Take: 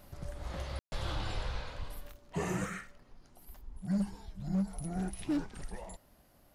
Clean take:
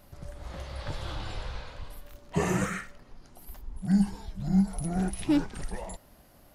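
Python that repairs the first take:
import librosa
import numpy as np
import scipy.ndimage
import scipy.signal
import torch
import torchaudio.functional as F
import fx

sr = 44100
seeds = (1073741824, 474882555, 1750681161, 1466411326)

y = fx.fix_declip(x, sr, threshold_db=-26.5)
y = fx.fix_ambience(y, sr, seeds[0], print_start_s=5.97, print_end_s=6.47, start_s=0.79, end_s=0.92)
y = fx.gain(y, sr, db=fx.steps((0.0, 0.0), (2.12, 7.0)))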